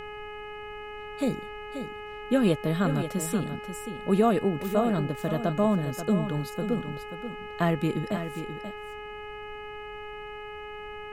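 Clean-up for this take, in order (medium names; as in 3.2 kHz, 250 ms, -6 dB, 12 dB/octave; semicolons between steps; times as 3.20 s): de-hum 420 Hz, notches 7; noise print and reduce 30 dB; inverse comb 534 ms -9.5 dB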